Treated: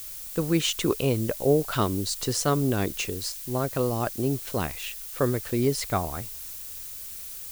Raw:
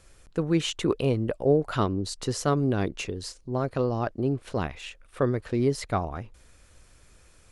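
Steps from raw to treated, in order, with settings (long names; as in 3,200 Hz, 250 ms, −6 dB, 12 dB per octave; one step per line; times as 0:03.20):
background noise blue −46 dBFS
high-shelf EQ 3,200 Hz +7.5 dB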